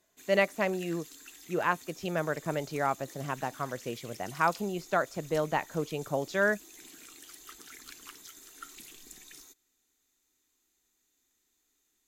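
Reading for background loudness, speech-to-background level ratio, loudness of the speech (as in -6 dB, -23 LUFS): -48.5 LUFS, 17.0 dB, -31.5 LUFS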